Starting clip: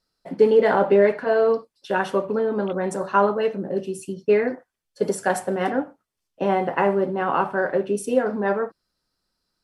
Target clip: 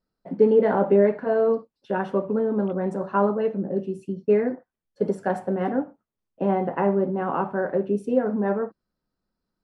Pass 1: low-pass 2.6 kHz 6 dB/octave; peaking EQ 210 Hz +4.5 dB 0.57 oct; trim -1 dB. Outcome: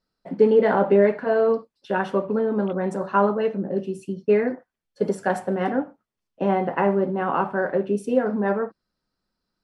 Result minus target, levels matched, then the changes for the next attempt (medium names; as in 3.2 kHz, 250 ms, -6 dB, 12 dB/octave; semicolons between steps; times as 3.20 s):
2 kHz band +4.5 dB
change: low-pass 830 Hz 6 dB/octave